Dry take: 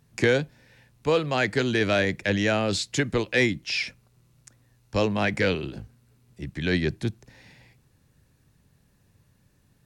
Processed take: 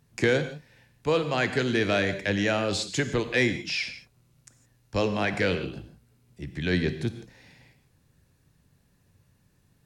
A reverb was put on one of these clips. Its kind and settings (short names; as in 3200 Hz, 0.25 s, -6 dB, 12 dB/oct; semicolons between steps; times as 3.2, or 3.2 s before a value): non-linear reverb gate 0.19 s flat, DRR 9 dB; gain -2 dB